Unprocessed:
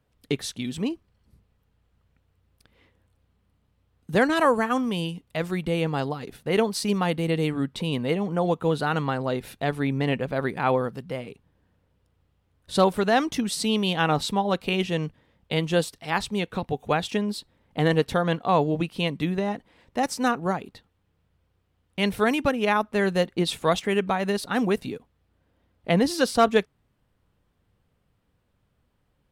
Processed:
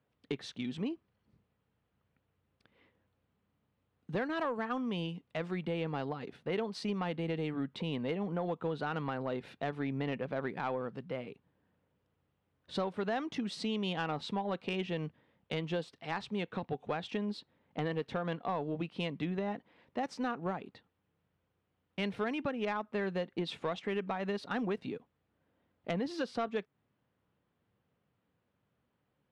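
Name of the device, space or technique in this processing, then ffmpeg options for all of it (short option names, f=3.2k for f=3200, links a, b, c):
AM radio: -af "highpass=130,lowpass=3.4k,acompressor=threshold=-25dB:ratio=4,asoftclip=type=tanh:threshold=-18dB,volume=-5.5dB"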